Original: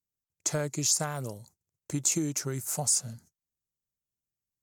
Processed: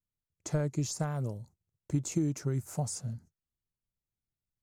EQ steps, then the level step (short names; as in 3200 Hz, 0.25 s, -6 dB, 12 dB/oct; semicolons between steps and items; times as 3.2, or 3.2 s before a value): tilt -3 dB/oct; -5.0 dB